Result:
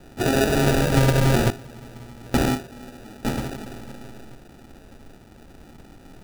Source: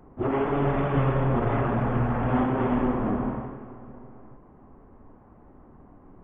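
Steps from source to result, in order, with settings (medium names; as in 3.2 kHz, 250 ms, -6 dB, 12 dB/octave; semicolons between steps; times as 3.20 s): 1.50–3.25 s: gate with hold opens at -13 dBFS; hum notches 50/100/150/200/250/300/350/400 Hz; sample-and-hold 41×; trim +5.5 dB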